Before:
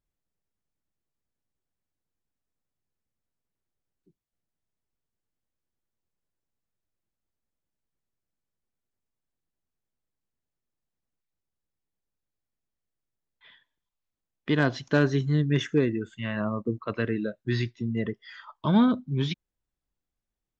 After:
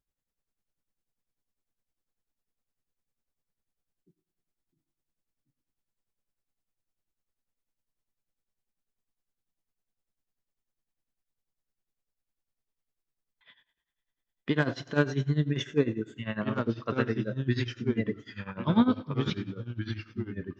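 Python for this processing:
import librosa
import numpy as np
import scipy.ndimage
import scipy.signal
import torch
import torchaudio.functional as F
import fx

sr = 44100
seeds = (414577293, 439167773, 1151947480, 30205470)

y = fx.rev_double_slope(x, sr, seeds[0], early_s=0.55, late_s=3.0, knee_db=-20, drr_db=9.5)
y = fx.echo_pitch(y, sr, ms=164, semitones=-2, count=2, db_per_echo=-6.0)
y = y * (1.0 - 0.86 / 2.0 + 0.86 / 2.0 * np.cos(2.0 * np.pi * 10.0 * (np.arange(len(y)) / sr)))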